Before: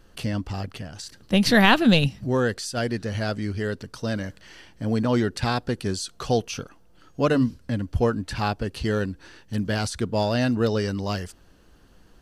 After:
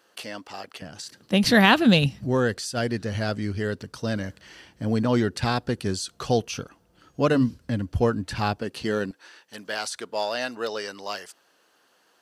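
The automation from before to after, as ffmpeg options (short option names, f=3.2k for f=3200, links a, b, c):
-af "asetnsamples=n=441:p=0,asendcmd='0.82 highpass f 150;1.44 highpass f 58;8.58 highpass f 190;9.11 highpass f 600',highpass=500"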